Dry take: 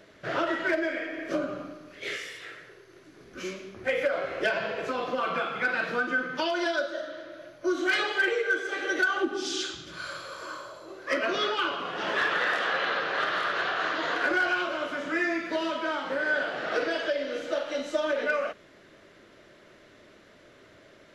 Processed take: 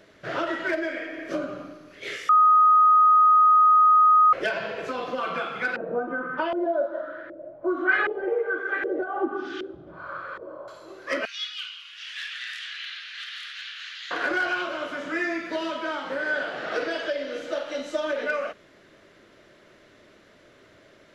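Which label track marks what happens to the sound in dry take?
2.290000	4.330000	bleep 1250 Hz -13 dBFS
5.760000	10.680000	LFO low-pass saw up 1.3 Hz 430–1900 Hz
11.250000	14.110000	inverse Chebyshev high-pass stop band from 660 Hz, stop band 60 dB

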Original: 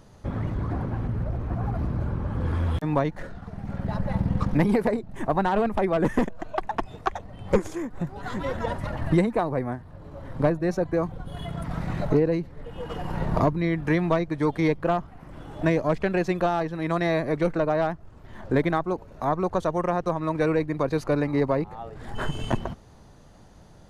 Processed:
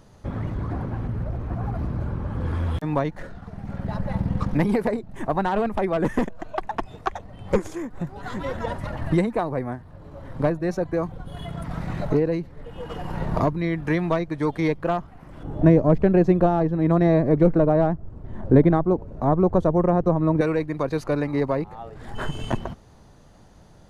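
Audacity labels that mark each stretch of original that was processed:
15.430000	20.410000	tilt shelf lows +10 dB

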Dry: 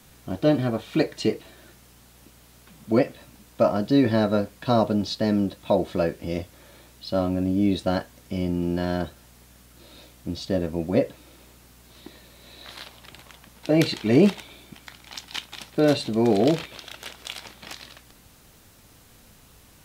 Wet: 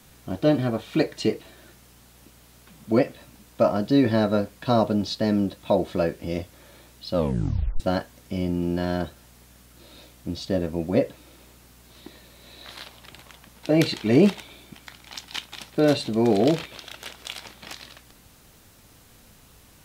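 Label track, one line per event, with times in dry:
7.120000	7.120000	tape stop 0.68 s

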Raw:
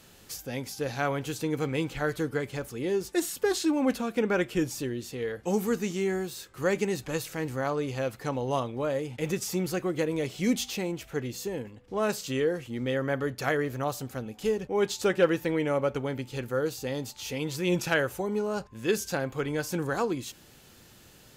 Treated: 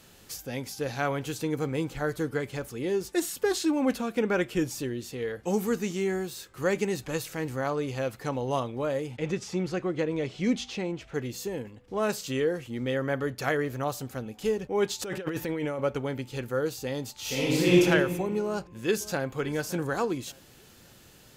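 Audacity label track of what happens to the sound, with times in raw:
1.540000	2.210000	bell 2700 Hz -5.5 dB 1.3 oct
9.170000	11.140000	air absorption 100 m
15.020000	15.790000	negative-ratio compressor -32 dBFS
17.200000	17.810000	reverb throw, RT60 1.7 s, DRR -7 dB
18.430000	19.380000	echo throw 0.57 s, feedback 35%, level -17.5 dB

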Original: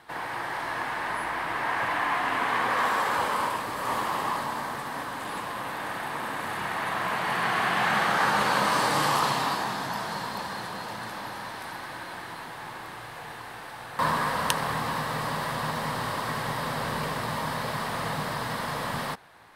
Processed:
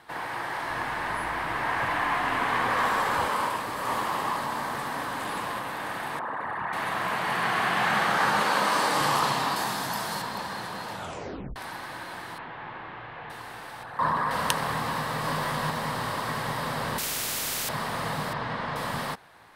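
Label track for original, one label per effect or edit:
0.700000	3.280000	low shelf 120 Hz +10 dB
4.430000	5.590000	fast leveller amount 50%
6.190000	6.730000	formant sharpening exponent 2
8.400000	9.010000	HPF 200 Hz
9.560000	10.220000	high shelf 6100 Hz +11 dB
10.920000	10.920000	tape stop 0.64 s
12.380000	13.300000	LPF 3100 Hz 24 dB/oct
13.830000	14.310000	formant sharpening exponent 1.5
15.220000	15.700000	doubler 20 ms -4 dB
16.980000	17.690000	spectral compressor 10:1
18.330000	18.760000	LPF 3300 Hz

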